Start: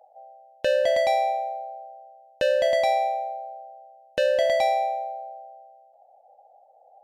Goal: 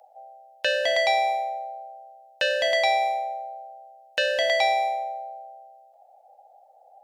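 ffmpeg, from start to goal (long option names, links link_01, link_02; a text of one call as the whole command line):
ffmpeg -i in.wav -filter_complex "[0:a]acrossover=split=6100[link_01][link_02];[link_02]acompressor=threshold=-59dB:ratio=4:attack=1:release=60[link_03];[link_01][link_03]amix=inputs=2:normalize=0,tiltshelf=frequency=640:gain=-9,acrossover=split=590[link_04][link_05];[link_04]asoftclip=type=tanh:threshold=-33.5dB[link_06];[link_06][link_05]amix=inputs=2:normalize=0" out.wav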